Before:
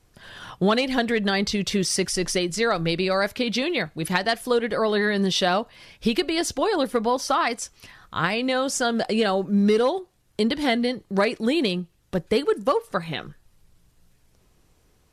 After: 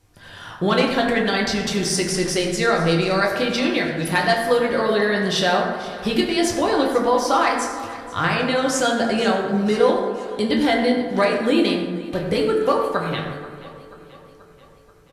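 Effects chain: feedback delay 483 ms, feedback 57%, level -18 dB; reverberation RT60 1.6 s, pre-delay 5 ms, DRR -1.5 dB

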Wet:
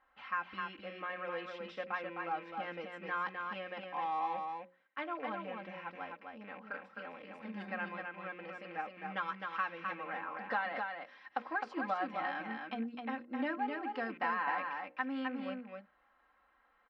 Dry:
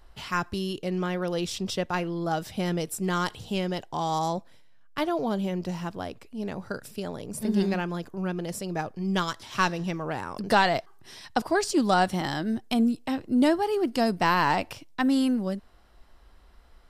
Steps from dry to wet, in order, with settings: rattle on loud lows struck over -39 dBFS, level -34 dBFS; low-pass 1.8 kHz 24 dB/octave; differentiator; hum notches 60/120/180/240/300/360/420/480/540/600 Hz; comb 3.8 ms, depth 87%; compression 6:1, threshold -39 dBFS, peak gain reduction 9 dB; delay 259 ms -4.5 dB; trim +8 dB

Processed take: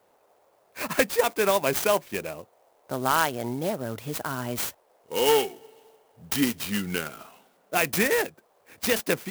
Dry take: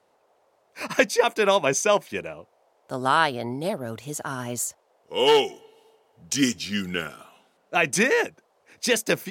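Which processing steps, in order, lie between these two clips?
in parallel at +1 dB: compression, threshold -30 dBFS, peak gain reduction 16 dB; on the sum: sampling jitter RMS 0.046 ms; trim -4.5 dB

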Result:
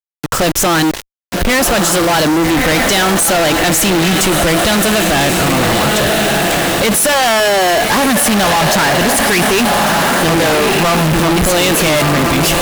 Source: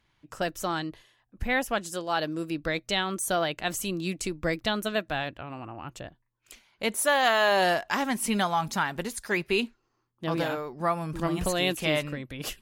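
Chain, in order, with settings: echo that smears into a reverb 1233 ms, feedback 49%, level -11 dB; bit crusher 8-bit; fuzz box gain 46 dB, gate -50 dBFS; trim +2.5 dB

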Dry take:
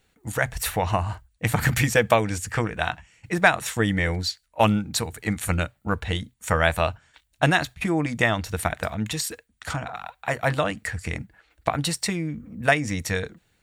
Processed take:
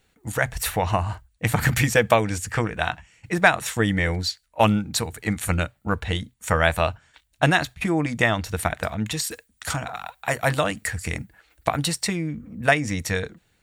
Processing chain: 9.30–11.84 s: treble shelf 5 kHz -> 8.5 kHz +11.5 dB; trim +1 dB

